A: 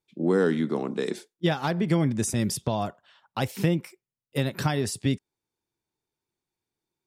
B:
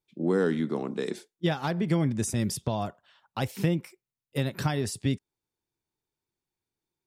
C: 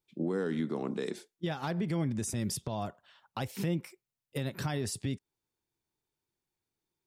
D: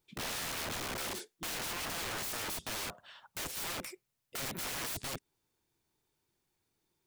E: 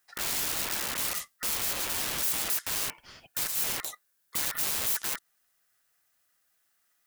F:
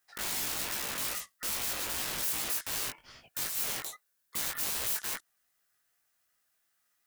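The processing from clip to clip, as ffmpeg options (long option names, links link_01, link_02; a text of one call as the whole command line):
ffmpeg -i in.wav -af "lowshelf=frequency=82:gain=6,volume=-3dB" out.wav
ffmpeg -i in.wav -af "alimiter=limit=-23.5dB:level=0:latency=1:release=175" out.wav
ffmpeg -i in.wav -af "aeval=exprs='(mod(106*val(0)+1,2)-1)/106':channel_layout=same,volume=7dB" out.wav
ffmpeg -i in.wav -af "crystalizer=i=1.5:c=0,aeval=exprs='val(0)*sin(2*PI*1600*n/s)':channel_layout=same,volume=5dB" out.wav
ffmpeg -i in.wav -af "flanger=delay=16.5:depth=4.5:speed=2.5" out.wav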